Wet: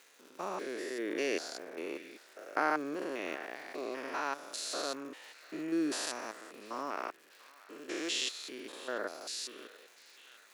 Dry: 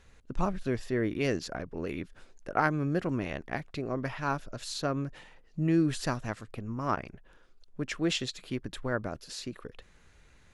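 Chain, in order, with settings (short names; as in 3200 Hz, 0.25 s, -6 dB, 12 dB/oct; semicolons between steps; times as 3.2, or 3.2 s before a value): stepped spectrum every 0.2 s; high shelf 3400 Hz +8 dB; crackle 330/s -48 dBFS; HPF 330 Hz 24 dB/oct; narrowing echo 0.693 s, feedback 82%, band-pass 2200 Hz, level -18 dB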